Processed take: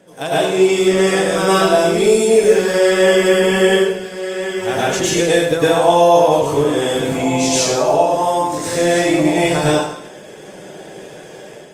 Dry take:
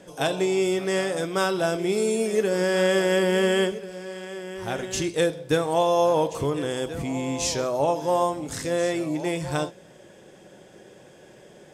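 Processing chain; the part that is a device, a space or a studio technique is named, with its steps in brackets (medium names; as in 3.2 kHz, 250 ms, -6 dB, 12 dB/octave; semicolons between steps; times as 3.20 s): far-field microphone of a smart speaker (reverberation RT60 0.75 s, pre-delay 100 ms, DRR -8 dB; high-pass 120 Hz 12 dB/octave; level rider gain up to 6.5 dB; Opus 32 kbps 48 kHz)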